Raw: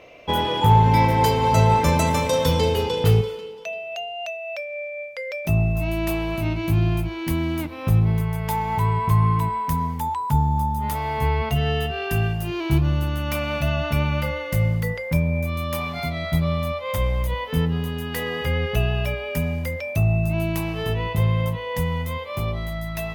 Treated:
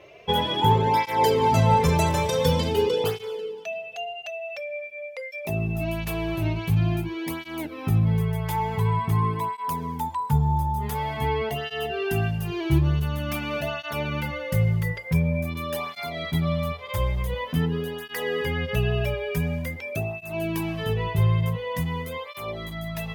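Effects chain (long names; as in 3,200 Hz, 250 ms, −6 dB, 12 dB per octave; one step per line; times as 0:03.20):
hollow resonant body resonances 410/1,700/3,300 Hz, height 6 dB
through-zero flanger with one copy inverted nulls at 0.47 Hz, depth 4.4 ms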